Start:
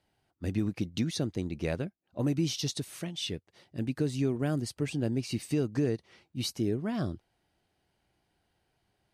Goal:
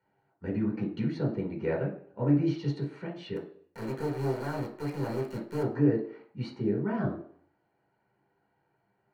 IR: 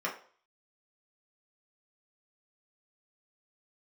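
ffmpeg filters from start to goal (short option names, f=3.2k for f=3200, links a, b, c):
-filter_complex "[0:a]lowpass=2.4k,asettb=1/sr,asplit=3[a][b][c];[a]atrim=end=3.364[d];[b]atrim=start=3.36:end=5.63,asetpts=PTS-STARTPTS,afade=t=in:d=0.004:c=qsin,afade=t=out:st=2.266:d=0.004:c=qsin,acrusher=bits=4:dc=4:mix=0:aa=0.000001[e];[c]atrim=start=5.626[f];[d][e]acrossfade=d=0.004:c1=hsin:c2=qsin[g];[g][f]acrossfade=d=0.004:c1=qsin:c2=hsin[h];[1:a]atrim=start_sample=2205,afade=t=out:st=0.39:d=0.01,atrim=end_sample=17640,asetrate=33957,aresample=44100[i];[h][i]afir=irnorm=-1:irlink=0,volume=-5dB"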